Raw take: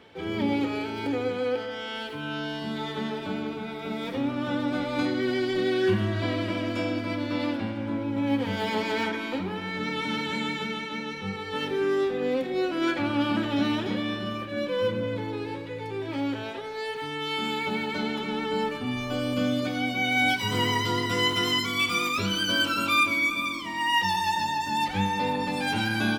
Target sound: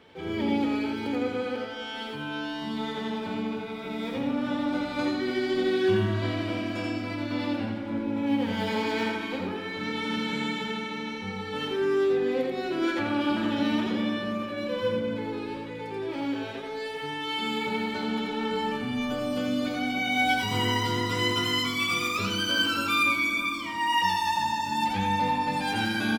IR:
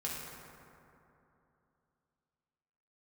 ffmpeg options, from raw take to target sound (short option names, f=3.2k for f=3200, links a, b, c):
-filter_complex "[0:a]aecho=1:1:85:0.631,asplit=2[a][b];[1:a]atrim=start_sample=2205[c];[b][c]afir=irnorm=-1:irlink=0,volume=-9dB[d];[a][d]amix=inputs=2:normalize=0,volume=-4.5dB"